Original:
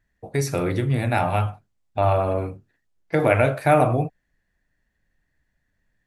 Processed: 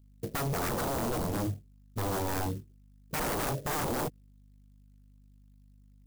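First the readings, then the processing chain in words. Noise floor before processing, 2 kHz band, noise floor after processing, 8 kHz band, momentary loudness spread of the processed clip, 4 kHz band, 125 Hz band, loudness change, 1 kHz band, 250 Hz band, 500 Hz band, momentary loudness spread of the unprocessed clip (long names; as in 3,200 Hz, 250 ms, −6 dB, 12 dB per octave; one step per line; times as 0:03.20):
−74 dBFS, −10.5 dB, −58 dBFS, +1.0 dB, 7 LU, −1.0 dB, −12.0 dB, −11.0 dB, −11.0 dB, −8.5 dB, −13.5 dB, 11 LU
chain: inverse Chebyshev low-pass filter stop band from 920 Hz, stop band 40 dB
noise gate −56 dBFS, range −7 dB
high-pass filter 92 Hz 12 dB per octave
in parallel at +1 dB: brickwall limiter −19 dBFS, peak gain reduction 7 dB
on the sum: rotating-speaker cabinet horn 7.5 Hz, later 1.2 Hz, at 0:00.40
mains hum 50 Hz, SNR 34 dB
wave folding −26.5 dBFS
converter with an unsteady clock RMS 0.083 ms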